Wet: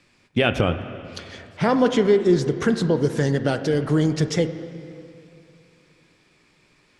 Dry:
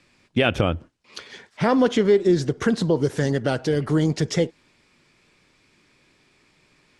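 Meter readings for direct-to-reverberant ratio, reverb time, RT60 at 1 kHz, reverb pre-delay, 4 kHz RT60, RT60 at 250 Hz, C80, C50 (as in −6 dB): 9.5 dB, 2.7 s, 2.6 s, 3 ms, 2.4 s, 2.8 s, 11.5 dB, 10.5 dB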